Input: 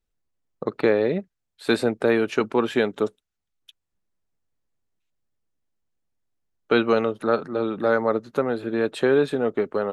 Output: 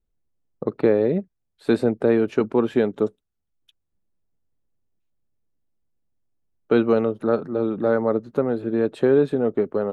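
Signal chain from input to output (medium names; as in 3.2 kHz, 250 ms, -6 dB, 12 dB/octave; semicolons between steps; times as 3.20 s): tilt shelf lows +7 dB, about 890 Hz; trim -2.5 dB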